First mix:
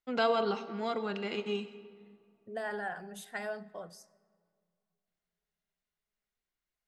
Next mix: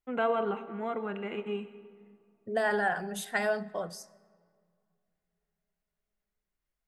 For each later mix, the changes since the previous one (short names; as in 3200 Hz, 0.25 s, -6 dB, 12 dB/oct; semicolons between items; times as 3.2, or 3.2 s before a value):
first voice: add Butterworth band-stop 5100 Hz, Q 0.7; second voice +9.0 dB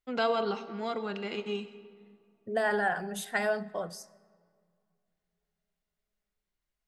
first voice: remove Butterworth band-stop 5100 Hz, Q 0.7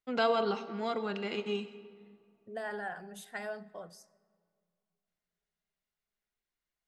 second voice -10.5 dB